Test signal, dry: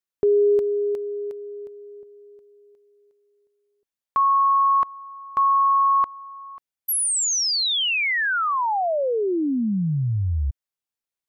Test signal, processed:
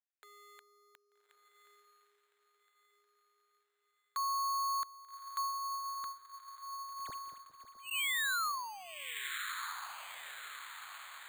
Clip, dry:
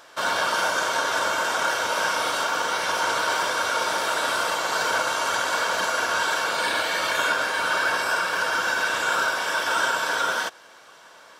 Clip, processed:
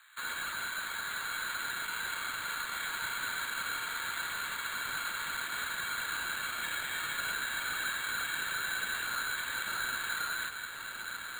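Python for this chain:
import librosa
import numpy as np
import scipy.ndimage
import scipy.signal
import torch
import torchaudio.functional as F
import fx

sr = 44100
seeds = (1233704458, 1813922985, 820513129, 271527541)

p1 = 10.0 ** (-21.0 / 20.0) * np.tanh(x / 10.0 ** (-21.0 / 20.0))
p2 = x + F.gain(torch.from_numpy(p1), -9.5).numpy()
p3 = scipy.signal.sosfilt(scipy.signal.butter(4, 1500.0, 'highpass', fs=sr, output='sos'), p2)
p4 = np.clip(p3, -10.0 ** (-26.0 / 20.0), 10.0 ** (-26.0 / 20.0))
p5 = fx.high_shelf(p4, sr, hz=5300.0, db=-8.5)
p6 = fx.echo_diffused(p5, sr, ms=1203, feedback_pct=50, wet_db=-6)
p7 = np.repeat(scipy.signal.resample_poly(p6, 1, 8), 8)[:len(p6)]
y = F.gain(torch.from_numpy(p7), -5.5).numpy()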